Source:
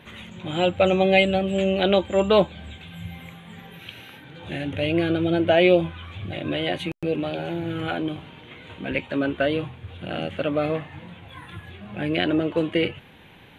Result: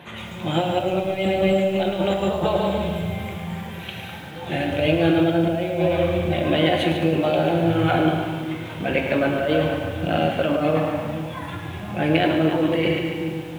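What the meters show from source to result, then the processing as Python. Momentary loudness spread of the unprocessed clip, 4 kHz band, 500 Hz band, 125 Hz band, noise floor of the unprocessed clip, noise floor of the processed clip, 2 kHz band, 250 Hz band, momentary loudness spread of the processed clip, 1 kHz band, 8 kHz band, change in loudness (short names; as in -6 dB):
22 LU, +0.5 dB, +1.5 dB, +5.5 dB, -49 dBFS, -35 dBFS, +1.0 dB, +3.5 dB, 12 LU, +4.0 dB, n/a, +1.5 dB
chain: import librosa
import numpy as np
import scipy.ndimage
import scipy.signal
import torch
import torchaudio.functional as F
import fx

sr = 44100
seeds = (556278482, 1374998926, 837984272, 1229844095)

p1 = scipy.signal.sosfilt(scipy.signal.butter(4, 62.0, 'highpass', fs=sr, output='sos'), x)
p2 = fx.peak_eq(p1, sr, hz=760.0, db=6.5, octaves=1.1)
p3 = p2 + fx.echo_split(p2, sr, split_hz=300.0, low_ms=457, high_ms=144, feedback_pct=52, wet_db=-9.5, dry=0)
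p4 = fx.over_compress(p3, sr, threshold_db=-22.0, ratio=-1.0)
p5 = fx.room_shoebox(p4, sr, seeds[0], volume_m3=540.0, walls='mixed', distance_m=0.83)
y = fx.echo_crushed(p5, sr, ms=107, feedback_pct=55, bits=7, wet_db=-9.5)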